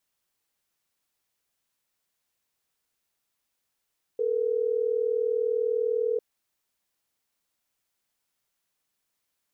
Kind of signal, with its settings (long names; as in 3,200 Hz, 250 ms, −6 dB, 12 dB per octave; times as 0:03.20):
call progress tone ringback tone, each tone −26 dBFS